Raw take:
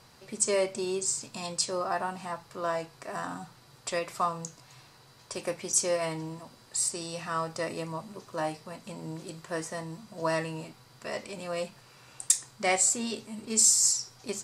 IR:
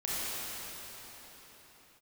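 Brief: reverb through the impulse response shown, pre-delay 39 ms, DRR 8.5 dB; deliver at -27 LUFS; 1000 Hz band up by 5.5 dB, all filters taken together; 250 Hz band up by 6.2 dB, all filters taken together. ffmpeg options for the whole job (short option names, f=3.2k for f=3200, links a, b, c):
-filter_complex "[0:a]equalizer=f=250:t=o:g=8.5,equalizer=f=1k:t=o:g=6.5,asplit=2[a][b];[1:a]atrim=start_sample=2205,adelay=39[c];[b][c]afir=irnorm=-1:irlink=0,volume=-16.5dB[d];[a][d]amix=inputs=2:normalize=0,volume=0.5dB"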